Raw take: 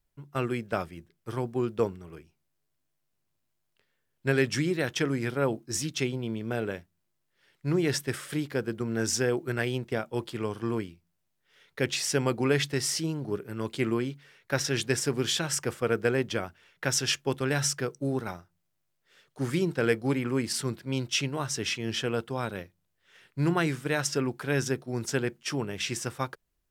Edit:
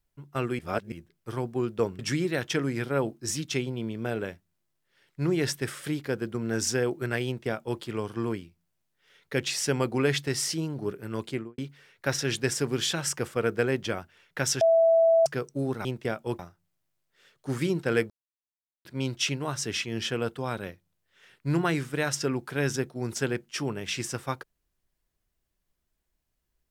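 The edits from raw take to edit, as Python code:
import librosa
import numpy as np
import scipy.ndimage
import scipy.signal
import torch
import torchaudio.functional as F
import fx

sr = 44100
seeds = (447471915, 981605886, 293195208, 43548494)

y = fx.studio_fade_out(x, sr, start_s=13.68, length_s=0.36)
y = fx.edit(y, sr, fx.reverse_span(start_s=0.59, length_s=0.33),
    fx.cut(start_s=1.99, length_s=2.46),
    fx.duplicate(start_s=9.72, length_s=0.54, to_s=18.31),
    fx.bleep(start_s=17.07, length_s=0.65, hz=659.0, db=-16.5),
    fx.silence(start_s=20.02, length_s=0.75), tone=tone)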